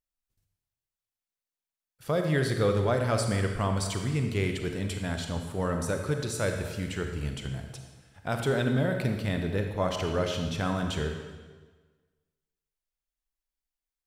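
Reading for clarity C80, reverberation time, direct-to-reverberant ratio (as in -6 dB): 6.5 dB, 1.4 s, 4.0 dB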